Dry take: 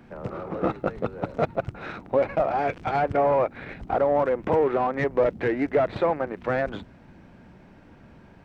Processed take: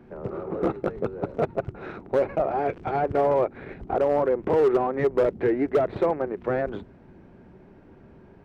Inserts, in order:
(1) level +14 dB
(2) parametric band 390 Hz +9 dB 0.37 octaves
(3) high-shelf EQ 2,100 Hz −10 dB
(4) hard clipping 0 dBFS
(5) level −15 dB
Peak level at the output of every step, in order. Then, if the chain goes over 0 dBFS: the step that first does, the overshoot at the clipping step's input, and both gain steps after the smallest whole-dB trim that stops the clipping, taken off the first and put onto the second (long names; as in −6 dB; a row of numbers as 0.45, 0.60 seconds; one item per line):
+4.0, +6.5, +6.0, 0.0, −15.0 dBFS
step 1, 6.0 dB
step 1 +8 dB, step 5 −9 dB